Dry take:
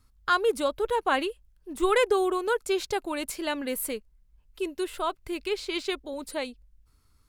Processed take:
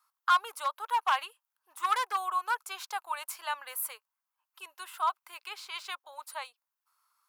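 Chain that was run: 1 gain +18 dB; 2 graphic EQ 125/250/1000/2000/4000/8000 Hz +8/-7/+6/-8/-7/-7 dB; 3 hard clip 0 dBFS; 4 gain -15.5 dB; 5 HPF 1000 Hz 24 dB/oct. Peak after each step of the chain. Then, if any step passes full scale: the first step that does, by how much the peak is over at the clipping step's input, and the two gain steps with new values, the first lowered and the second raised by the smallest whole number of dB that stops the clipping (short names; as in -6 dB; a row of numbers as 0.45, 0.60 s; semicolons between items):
+6.5, +6.0, 0.0, -15.5, -14.5 dBFS; step 1, 6.0 dB; step 1 +12 dB, step 4 -9.5 dB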